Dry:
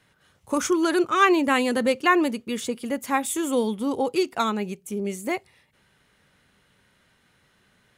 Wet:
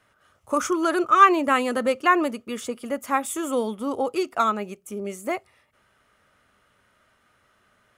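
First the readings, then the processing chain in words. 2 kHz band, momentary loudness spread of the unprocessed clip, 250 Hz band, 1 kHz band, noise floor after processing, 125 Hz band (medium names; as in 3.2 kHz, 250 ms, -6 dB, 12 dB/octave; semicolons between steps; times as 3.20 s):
-1.0 dB, 11 LU, -3.0 dB, +4.0 dB, -65 dBFS, no reading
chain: graphic EQ with 31 bands 160 Hz -11 dB, 630 Hz +8 dB, 1.25 kHz +11 dB, 4 kHz -5 dB; trim -2.5 dB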